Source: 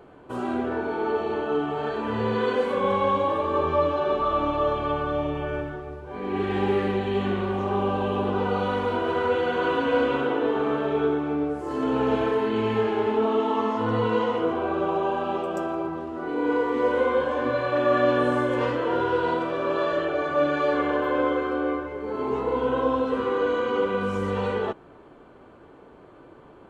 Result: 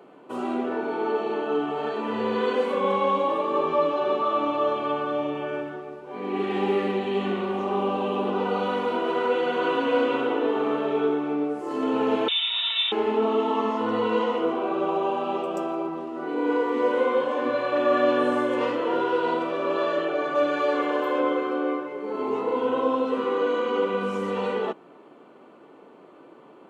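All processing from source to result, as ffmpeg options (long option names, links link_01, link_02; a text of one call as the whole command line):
ffmpeg -i in.wav -filter_complex "[0:a]asettb=1/sr,asplit=3[link_01][link_02][link_03];[link_01]atrim=end=12.284[link_04];[link_02]atrim=start=12.28:end=12.92,asetpts=PTS-STARTPTS,afade=type=in:duration=0.004:curve=qsin,afade=type=out:start_time=0.636:duration=0.004:curve=qsin,highpass=frequency=320:poles=1,lowpass=frequency=3400:width_type=q:width=0.5098,lowpass=frequency=3400:width_type=q:width=0.6013,lowpass=frequency=3400:width_type=q:width=0.9,lowpass=frequency=3400:width_type=q:width=2.563,afreqshift=-4000[link_05];[link_03]atrim=start=12.916[link_06];[link_04][link_05]acrossfade=duration=0.004:curve1=hsin:curve2=qsin[link_07];[link_07][link_06]acrossfade=duration=0.004:curve1=qsin:curve2=hsin,asettb=1/sr,asplit=3[link_08][link_09][link_10];[link_08]atrim=end=20.354[link_11];[link_09]atrim=start=20.35:end=21.2,asetpts=PTS-STARTPTS,afade=type=in:duration=0.004:curve=qsin,afade=type=out:start_time=0.846:duration=0.004:curve=qsin,acrossover=split=3300[link_12][link_13];[link_13]acompressor=threshold=-52dB:ratio=4:attack=1:release=60[link_14];[link_12][link_14]amix=inputs=2:normalize=0,bass=frequency=250:gain=-5,treble=frequency=4000:gain=9[link_15];[link_10]atrim=start=21.196[link_16];[link_11][link_15]acrossfade=duration=0.004:curve1=hsin:curve2=qsin[link_17];[link_17][link_16]acrossfade=duration=0.004:curve1=qsin:curve2=hsin,highpass=frequency=180:width=0.5412,highpass=frequency=180:width=1.3066,equalizer=frequency=2700:width_type=o:width=0.2:gain=3.5,bandreject=frequency=1600:width=9.4" out.wav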